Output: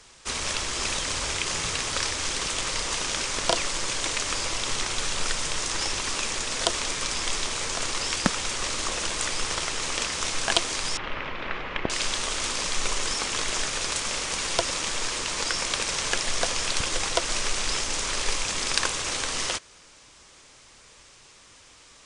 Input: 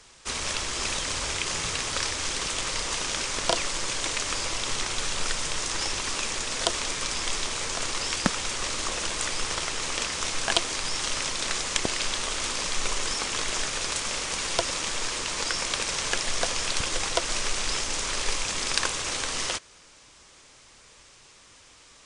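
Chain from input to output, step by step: 10.97–11.90 s: low-pass 2.6 kHz 24 dB/octave; trim +1 dB

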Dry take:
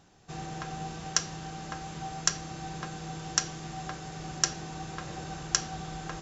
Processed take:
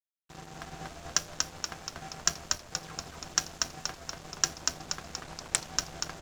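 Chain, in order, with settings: 2.57–3.18 s: phase dispersion lows, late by 145 ms, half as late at 1.3 kHz; crossover distortion -39 dBFS; frequency-shifting echo 238 ms, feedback 57%, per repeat -85 Hz, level -3 dB; 5.22–5.64 s: loudspeaker Doppler distortion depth 0.69 ms

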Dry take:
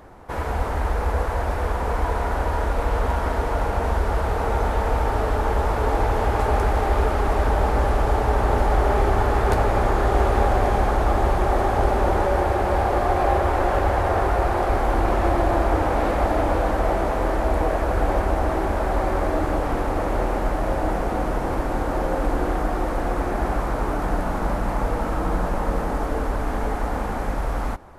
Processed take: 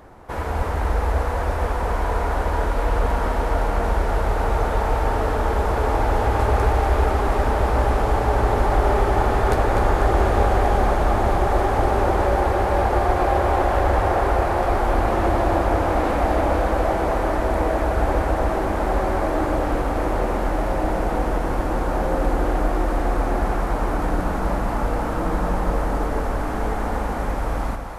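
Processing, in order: two-band feedback delay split 400 Hz, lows 127 ms, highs 248 ms, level -6.5 dB

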